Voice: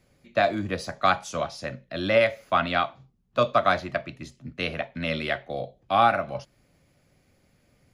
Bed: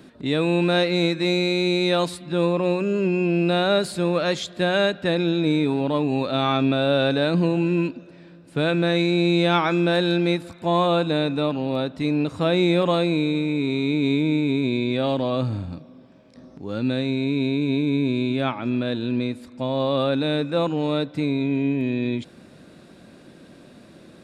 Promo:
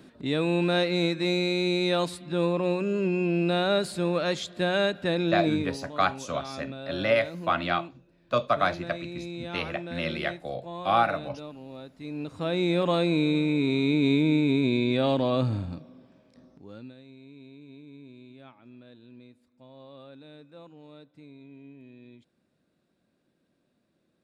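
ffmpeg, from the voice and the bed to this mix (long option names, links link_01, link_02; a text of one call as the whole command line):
ffmpeg -i stem1.wav -i stem2.wav -filter_complex "[0:a]adelay=4950,volume=-3dB[link_01];[1:a]volume=12dB,afade=type=out:start_time=5.43:duration=0.35:silence=0.211349,afade=type=in:start_time=11.97:duration=1.36:silence=0.149624,afade=type=out:start_time=15.52:duration=1.42:silence=0.0595662[link_02];[link_01][link_02]amix=inputs=2:normalize=0" out.wav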